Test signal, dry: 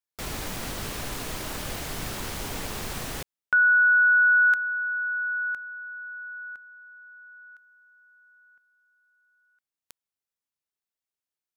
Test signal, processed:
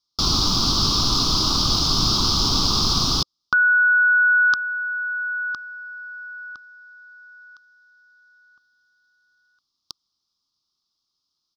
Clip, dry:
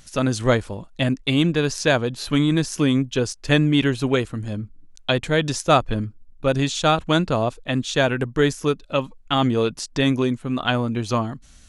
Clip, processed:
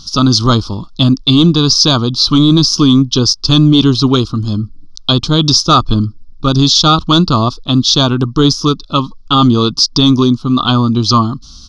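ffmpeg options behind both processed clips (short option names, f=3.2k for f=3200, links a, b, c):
-af "firequalizer=gain_entry='entry(320,0);entry(520,-14);entry(1200,5);entry(1800,-29);entry(3400,4);entry(5100,14);entry(7600,-15);entry(11000,-17)':delay=0.05:min_phase=1,apsyclip=14.5dB,volume=-2dB"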